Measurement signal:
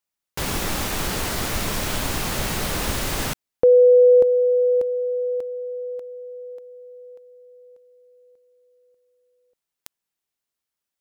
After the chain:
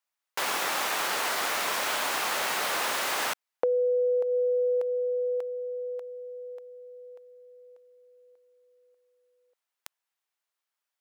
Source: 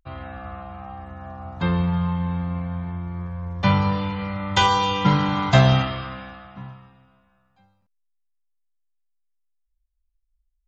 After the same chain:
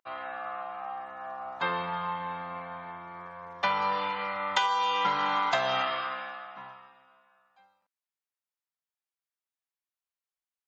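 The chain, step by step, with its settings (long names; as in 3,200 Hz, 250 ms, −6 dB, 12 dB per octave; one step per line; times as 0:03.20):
high-pass filter 790 Hz 12 dB per octave
high-shelf EQ 2,600 Hz −9 dB
downward compressor 12 to 1, threshold −28 dBFS
level +5 dB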